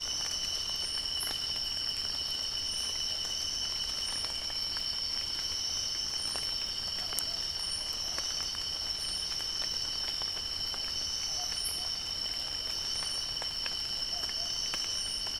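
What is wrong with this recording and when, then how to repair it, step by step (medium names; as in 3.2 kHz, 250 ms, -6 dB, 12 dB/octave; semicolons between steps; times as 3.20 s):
crackle 47 per s -40 dBFS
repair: de-click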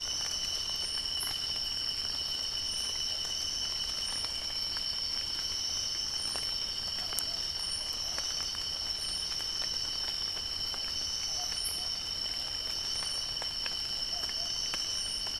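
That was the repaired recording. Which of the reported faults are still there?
nothing left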